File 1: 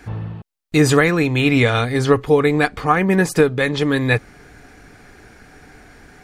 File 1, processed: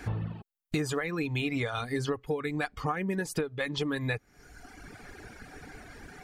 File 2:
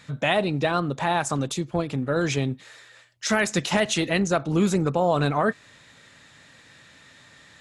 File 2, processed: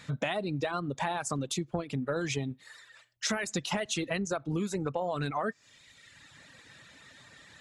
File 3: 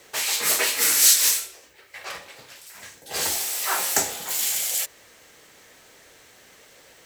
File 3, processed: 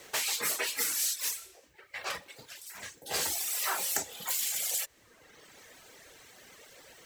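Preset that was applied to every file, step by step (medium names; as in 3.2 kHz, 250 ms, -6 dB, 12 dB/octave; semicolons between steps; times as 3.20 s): reverb removal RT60 1.1 s; compression 10:1, threshold -28 dBFS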